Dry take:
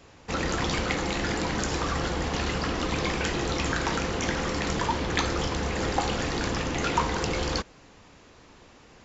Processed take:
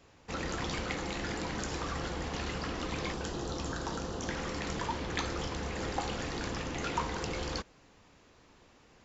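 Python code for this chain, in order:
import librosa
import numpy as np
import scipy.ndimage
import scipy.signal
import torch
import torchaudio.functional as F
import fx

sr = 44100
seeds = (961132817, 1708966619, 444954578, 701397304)

y = fx.peak_eq(x, sr, hz=2200.0, db=-13.0, octaves=0.67, at=(3.13, 4.29))
y = y * librosa.db_to_amplitude(-8.0)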